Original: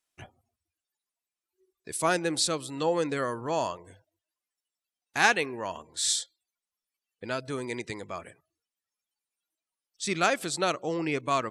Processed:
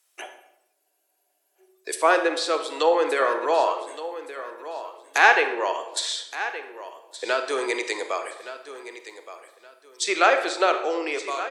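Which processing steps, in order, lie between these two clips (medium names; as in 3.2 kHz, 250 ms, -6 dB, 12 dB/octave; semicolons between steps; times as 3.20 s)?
fade out at the end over 0.90 s; steep high-pass 370 Hz 36 dB/octave; treble shelf 9.2 kHz +11.5 dB; in parallel at -2 dB: compression, threshold -36 dBFS, peak gain reduction 18.5 dB; on the sum: low-pass that closes with the level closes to 2.6 kHz, closed at -23.5 dBFS; feedback delay 1170 ms, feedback 24%, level -13.5 dB; on a send at -7 dB: reverberation RT60 0.85 s, pre-delay 33 ms; on the sum: spectral freeze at 0.76 s, 0.81 s; trim +6 dB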